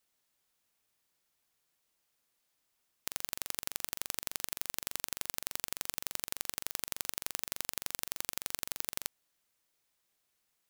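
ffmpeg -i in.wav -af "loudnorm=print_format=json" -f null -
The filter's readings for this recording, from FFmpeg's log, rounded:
"input_i" : "-37.5",
"input_tp" : "-5.3",
"input_lra" : "3.7",
"input_thresh" : "-47.5",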